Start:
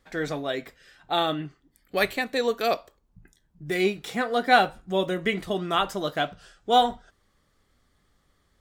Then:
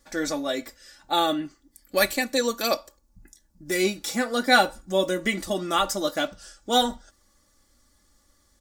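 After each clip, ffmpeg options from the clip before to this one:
-af "highshelf=f=4.2k:t=q:w=1.5:g=9,aecho=1:1:3.5:0.7"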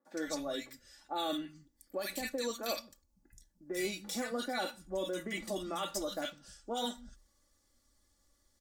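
-filter_complex "[0:a]alimiter=limit=-16.5dB:level=0:latency=1:release=27,acrossover=split=170|1400[a][b][c];[c]adelay=50[d];[a]adelay=160[e];[e][b][d]amix=inputs=3:normalize=0,volume=-9dB"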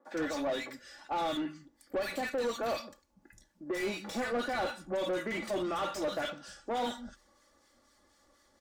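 -filter_complex "[0:a]acrossover=split=1300[a][b];[a]aeval=exprs='val(0)*(1-0.5/2+0.5/2*cos(2*PI*4.1*n/s))':c=same[c];[b]aeval=exprs='val(0)*(1-0.5/2-0.5/2*cos(2*PI*4.1*n/s))':c=same[d];[c][d]amix=inputs=2:normalize=0,asplit=2[e][f];[f]highpass=f=720:p=1,volume=25dB,asoftclip=type=tanh:threshold=-24.5dB[g];[e][g]amix=inputs=2:normalize=0,lowpass=f=1.2k:p=1,volume=-6dB,volume=1dB"

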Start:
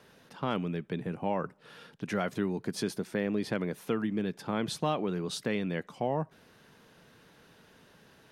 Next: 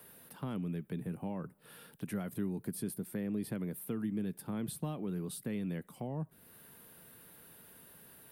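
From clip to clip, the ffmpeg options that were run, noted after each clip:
-filter_complex "[0:a]aexciter=amount=6.5:drive=9.2:freq=8.8k,acrossover=split=290[a][b];[b]acompressor=threshold=-52dB:ratio=2[c];[a][c]amix=inputs=2:normalize=0,volume=-2dB"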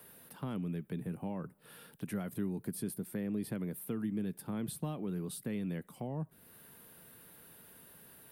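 -af anull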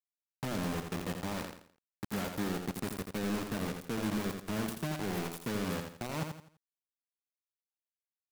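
-filter_complex "[0:a]acrusher=bits=5:mix=0:aa=0.000001,asplit=2[a][b];[b]aecho=0:1:84|168|252|336:0.501|0.17|0.0579|0.0197[c];[a][c]amix=inputs=2:normalize=0"

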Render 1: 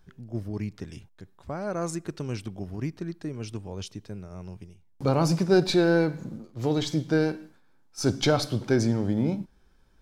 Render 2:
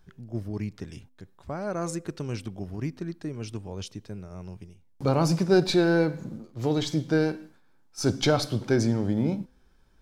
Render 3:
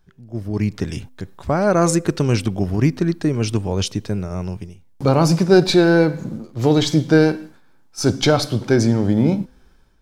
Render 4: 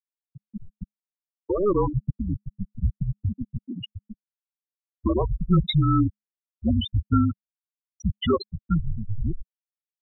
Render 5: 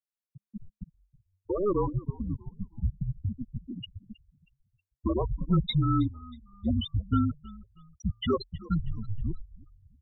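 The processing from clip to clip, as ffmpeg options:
-af "bandreject=f=254.5:t=h:w=4,bandreject=f=509:t=h:w=4"
-af "dynaudnorm=f=220:g=5:m=16.5dB,volume=-1dB"
-filter_complex "[0:a]asplit=2[a][b];[b]highpass=f=720:p=1,volume=15dB,asoftclip=type=tanh:threshold=-1.5dB[c];[a][c]amix=inputs=2:normalize=0,lowpass=f=5.1k:p=1,volume=-6dB,afftfilt=real='re*gte(hypot(re,im),0.794)':imag='im*gte(hypot(re,im),0.794)':win_size=1024:overlap=0.75,afreqshift=-210,volume=-7.5dB"
-filter_complex "[0:a]asplit=4[a][b][c][d];[b]adelay=318,afreqshift=-48,volume=-20dB[e];[c]adelay=636,afreqshift=-96,volume=-28.4dB[f];[d]adelay=954,afreqshift=-144,volume=-36.8dB[g];[a][e][f][g]amix=inputs=4:normalize=0,volume=-5dB"

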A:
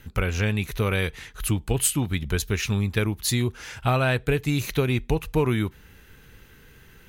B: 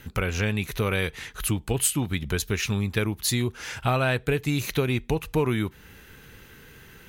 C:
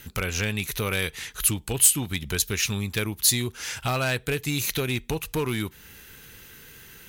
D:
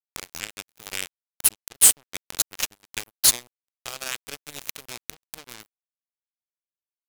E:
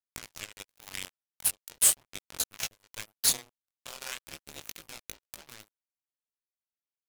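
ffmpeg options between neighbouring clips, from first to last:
-filter_complex "[0:a]lowshelf=f=65:g=-9,asplit=2[a][b];[b]acompressor=threshold=-33dB:ratio=6,volume=2dB[c];[a][c]amix=inputs=2:normalize=0,volume=-3dB"
-af "volume=17.5dB,asoftclip=hard,volume=-17.5dB,highshelf=f=3.1k:g=12,volume=-3dB"
-af "acrusher=bits=2:mix=0:aa=0.5,volume=3dB"
-af "flanger=delay=18:depth=4.4:speed=0.4,aeval=exprs='val(0)*sin(2*PI*110*n/s)':c=same,aphaser=in_gain=1:out_gain=1:delay=2.1:decay=0.27:speed=0.87:type=sinusoidal,volume=-1.5dB"

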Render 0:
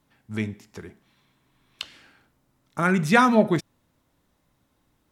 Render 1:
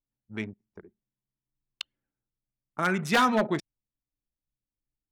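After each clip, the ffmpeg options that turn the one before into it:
-af "aeval=exprs='0.282*(abs(mod(val(0)/0.282+3,4)-2)-1)':c=same,anlmdn=10,lowshelf=f=200:g=-10,volume=-2.5dB"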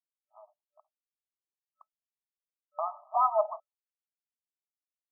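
-af "tiltshelf=f=970:g=5,agate=range=-33dB:threshold=-42dB:ratio=3:detection=peak,afftfilt=real='re*between(b*sr/4096,590,1300)':imag='im*between(b*sr/4096,590,1300)':win_size=4096:overlap=0.75"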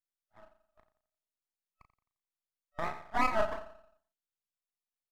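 -filter_complex "[0:a]asplit=2[a][b];[b]adelay=36,volume=-6dB[c];[a][c]amix=inputs=2:normalize=0,asplit=2[d][e];[e]adelay=87,lowpass=f=1.1k:p=1,volume=-11dB,asplit=2[f][g];[g]adelay=87,lowpass=f=1.1k:p=1,volume=0.54,asplit=2[h][i];[i]adelay=87,lowpass=f=1.1k:p=1,volume=0.54,asplit=2[j][k];[k]adelay=87,lowpass=f=1.1k:p=1,volume=0.54,asplit=2[l][m];[m]adelay=87,lowpass=f=1.1k:p=1,volume=0.54,asplit=2[n][o];[o]adelay=87,lowpass=f=1.1k:p=1,volume=0.54[p];[d][f][h][j][l][n][p]amix=inputs=7:normalize=0,aeval=exprs='max(val(0),0)':c=same"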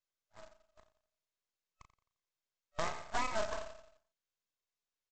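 -af "acompressor=threshold=-31dB:ratio=8,aecho=1:1:1.9:0.31,aresample=16000,acrusher=bits=2:mode=log:mix=0:aa=0.000001,aresample=44100,volume=1dB"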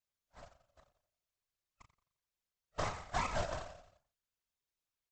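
-af "afftfilt=real='hypot(re,im)*cos(2*PI*random(0))':imag='hypot(re,im)*sin(2*PI*random(1))':win_size=512:overlap=0.75,volume=5dB"

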